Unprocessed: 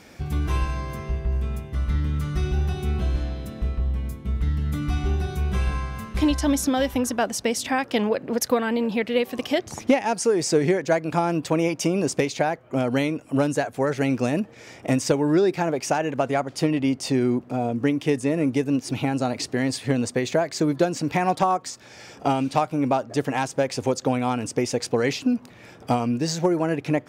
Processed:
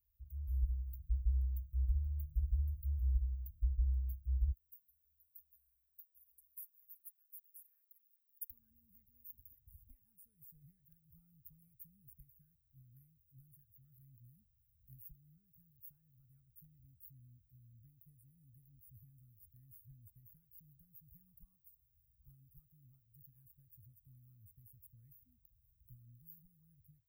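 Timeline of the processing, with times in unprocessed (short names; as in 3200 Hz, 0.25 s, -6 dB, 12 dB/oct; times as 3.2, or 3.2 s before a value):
4.51–8.5 HPF 1400 Hz
12.23–15.83 fixed phaser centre 1800 Hz, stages 4
whole clip: inverse Chebyshev band-stop 320–6900 Hz, stop band 80 dB; tilt +3 dB/oct; AGC gain up to 11 dB; gain -2 dB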